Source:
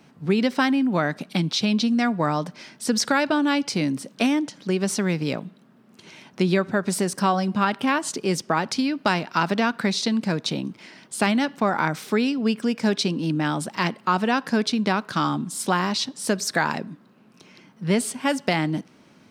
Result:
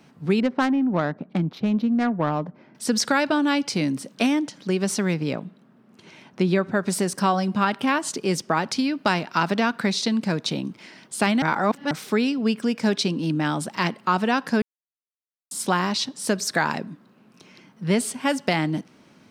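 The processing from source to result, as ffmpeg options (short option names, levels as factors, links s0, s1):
-filter_complex "[0:a]asettb=1/sr,asplit=3[s0][s1][s2];[s0]atrim=end=0.404[s3];[s1]atrim=start=0.4:end=2.75,asetpts=PTS-STARTPTS,afade=t=in:d=0.004:c=qsin,afade=t=out:st=2.346:d=0.004:c=qsin,adynamicsmooth=sensitivity=0.5:basefreq=930[s4];[s2]atrim=start=2.746[s5];[s3][s4]acrossfade=d=0.004:c1=hsin:c2=qsin[s6];[s6][s5]acrossfade=d=0.004:c1=qsin:c2=hsin,asettb=1/sr,asplit=3[s7][s8][s9];[s7]atrim=end=5.144[s10];[s8]atrim=start=5.14:end=6.75,asetpts=PTS-STARTPTS,afade=t=in:d=0.004:c=qsin,afade=t=out:st=1.606:d=0.004:c=qsin,highshelf=f=3300:g=-7[s11];[s9]atrim=start=6.746[s12];[s10][s11]acrossfade=d=0.004:c1=hsin:c2=qsin[s13];[s13][s12]acrossfade=d=0.004:c1=qsin:c2=hsin,asplit=5[s14][s15][s16][s17][s18];[s14]atrim=end=11.422[s19];[s15]atrim=start=11.418:end=11.912,asetpts=PTS-STARTPTS,areverse[s20];[s16]atrim=start=11.908:end=14.62,asetpts=PTS-STARTPTS,afade=t=out:st=2.708:d=0.004:c=hsin[s21];[s17]atrim=start=14.62:end=15.51,asetpts=PTS-STARTPTS,volume=0[s22];[s18]atrim=start=15.51,asetpts=PTS-STARTPTS,afade=t=in:d=0.004:c=hsin[s23];[s19][s20]acrossfade=d=0.004:c1=hsin:c2=hsin[s24];[s21][s22][s23]concat=n=3:v=0:a=1[s25];[s24][s25]acrossfade=d=0.004:c1=hsin:c2=hsin"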